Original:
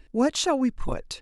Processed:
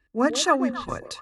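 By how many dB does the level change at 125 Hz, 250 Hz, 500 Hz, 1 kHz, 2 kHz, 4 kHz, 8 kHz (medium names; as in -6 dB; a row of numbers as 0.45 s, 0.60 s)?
-2.5 dB, -0.5 dB, +1.0 dB, +5.5 dB, +9.0 dB, +2.0 dB, +2.0 dB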